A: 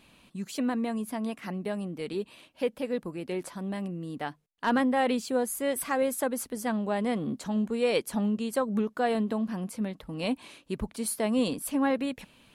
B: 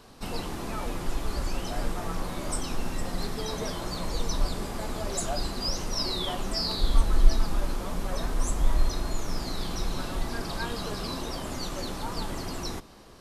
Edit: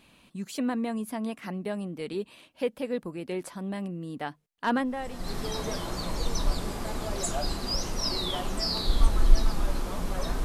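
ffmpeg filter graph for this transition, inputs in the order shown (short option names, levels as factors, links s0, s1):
-filter_complex "[0:a]apad=whole_dur=10.44,atrim=end=10.44,atrim=end=5.39,asetpts=PTS-STARTPTS[s0];[1:a]atrim=start=2.65:end=8.38,asetpts=PTS-STARTPTS[s1];[s0][s1]acrossfade=d=0.68:c1=qua:c2=qua"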